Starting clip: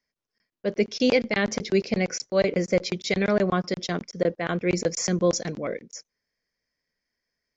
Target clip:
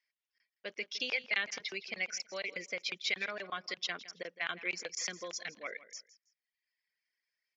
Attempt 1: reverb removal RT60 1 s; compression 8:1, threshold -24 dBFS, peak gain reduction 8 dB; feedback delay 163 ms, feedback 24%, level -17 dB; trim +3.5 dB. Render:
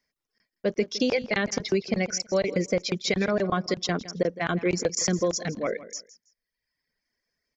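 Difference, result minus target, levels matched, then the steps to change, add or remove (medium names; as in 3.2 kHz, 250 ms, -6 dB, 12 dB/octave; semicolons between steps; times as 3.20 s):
2 kHz band -7.0 dB
add after compression: band-pass filter 2.7 kHz, Q 1.7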